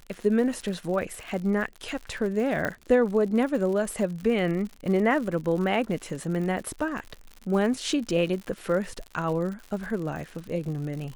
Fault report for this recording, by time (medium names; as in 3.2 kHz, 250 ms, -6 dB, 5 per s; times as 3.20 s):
crackle 110 per s -34 dBFS
2.65 s: pop -15 dBFS